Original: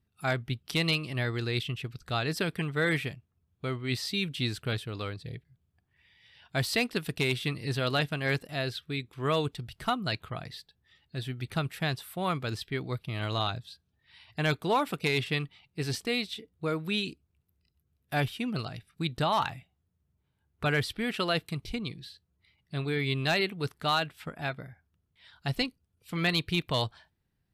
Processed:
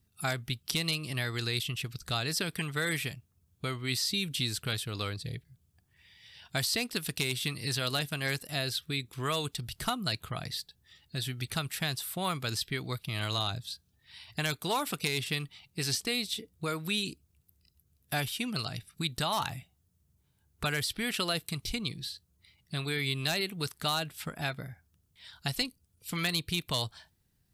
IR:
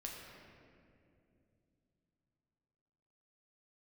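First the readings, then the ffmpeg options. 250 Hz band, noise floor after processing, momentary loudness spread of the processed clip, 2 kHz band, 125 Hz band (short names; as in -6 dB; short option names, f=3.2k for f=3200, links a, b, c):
-4.0 dB, -72 dBFS, 9 LU, -2.5 dB, -3.0 dB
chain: -filter_complex "[0:a]bass=f=250:g=3,treble=f=4k:g=12,acrossover=split=780|7100[a][b][c];[a]acompressor=threshold=-36dB:ratio=4[d];[b]acompressor=threshold=-32dB:ratio=4[e];[c]acompressor=threshold=-41dB:ratio=4[f];[d][e][f]amix=inputs=3:normalize=0,volume=1.5dB"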